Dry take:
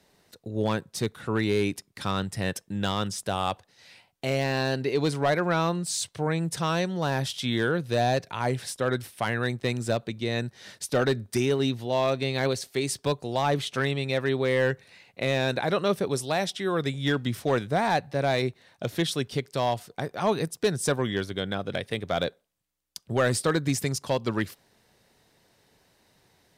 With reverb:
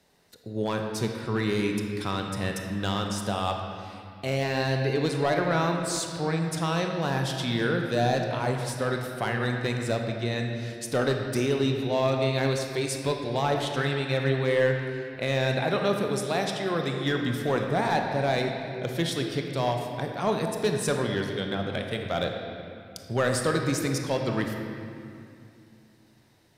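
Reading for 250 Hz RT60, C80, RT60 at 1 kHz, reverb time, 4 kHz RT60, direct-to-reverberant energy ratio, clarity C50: 3.2 s, 4.5 dB, 2.4 s, 2.5 s, 1.9 s, 2.5 dB, 3.5 dB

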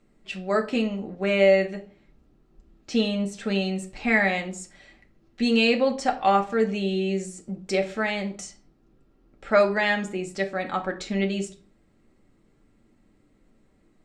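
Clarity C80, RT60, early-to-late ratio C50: 18.0 dB, 0.45 s, 13.5 dB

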